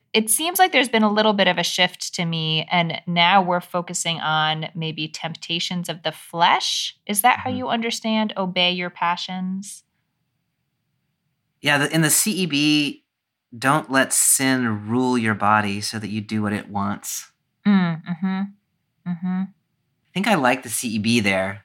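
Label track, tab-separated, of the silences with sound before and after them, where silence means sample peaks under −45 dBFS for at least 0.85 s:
9.800000	11.630000	silence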